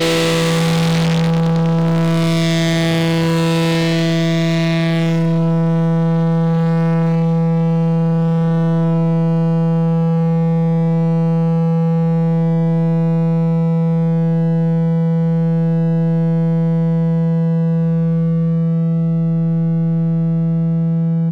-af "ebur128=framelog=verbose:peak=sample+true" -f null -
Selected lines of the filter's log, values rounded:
Integrated loudness:
  I:         -15.6 LUFS
  Threshold: -25.6 LUFS
Loudness range:
  LRA:         0.9 LU
  Threshold: -35.6 LUFS
  LRA low:   -16.1 LUFS
  LRA high:  -15.2 LUFS
Sample peak:
  Peak:      -13.7 dBFS
True peak:
  Peak:      -12.7 dBFS